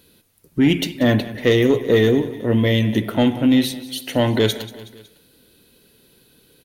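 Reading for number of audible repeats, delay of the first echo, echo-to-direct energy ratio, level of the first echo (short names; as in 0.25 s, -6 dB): 3, 0.185 s, -15.0 dB, -16.5 dB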